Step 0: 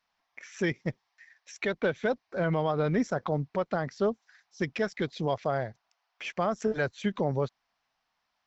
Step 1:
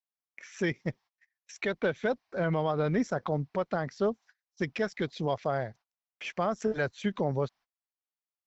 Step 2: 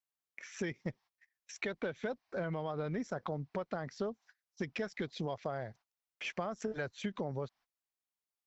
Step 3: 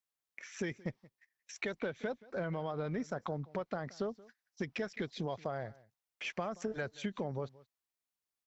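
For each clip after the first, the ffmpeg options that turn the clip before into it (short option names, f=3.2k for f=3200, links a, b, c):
-af "agate=range=-27dB:threshold=-51dB:ratio=16:detection=peak,volume=-1dB"
-af "acompressor=threshold=-33dB:ratio=6,volume=-1dB"
-af "aecho=1:1:177:0.0841"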